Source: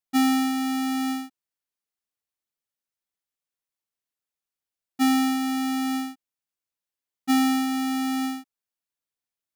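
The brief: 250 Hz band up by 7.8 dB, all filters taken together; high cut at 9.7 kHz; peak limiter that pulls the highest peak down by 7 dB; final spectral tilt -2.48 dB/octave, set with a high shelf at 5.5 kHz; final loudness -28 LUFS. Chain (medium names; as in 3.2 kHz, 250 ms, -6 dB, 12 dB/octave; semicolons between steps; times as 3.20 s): low-pass 9.7 kHz; peaking EQ 250 Hz +8 dB; treble shelf 5.5 kHz +6 dB; trim -8 dB; peak limiter -24 dBFS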